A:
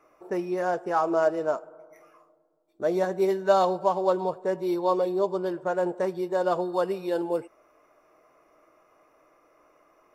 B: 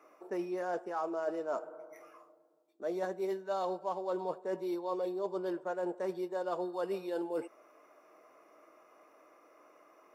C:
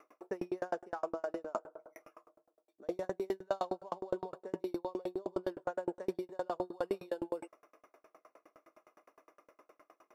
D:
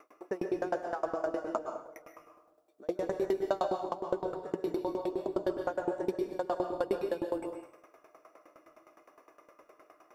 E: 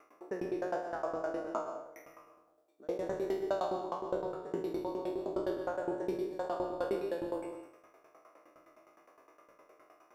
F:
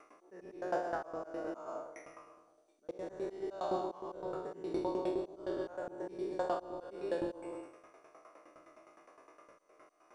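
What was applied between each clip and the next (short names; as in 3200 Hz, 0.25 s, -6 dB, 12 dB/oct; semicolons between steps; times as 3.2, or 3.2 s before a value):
HPF 200 Hz 24 dB/oct; reverse; compressor 6:1, threshold -33 dBFS, peak gain reduction 17 dB; reverse
dB-ramp tremolo decaying 9.7 Hz, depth 37 dB; gain +6 dB
plate-style reverb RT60 0.61 s, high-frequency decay 0.95×, pre-delay 0.105 s, DRR 4.5 dB; gain +3.5 dB
spectral trails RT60 0.52 s; gain -5 dB
auto swell 0.243 s; gain +2 dB; MP2 128 kbps 24000 Hz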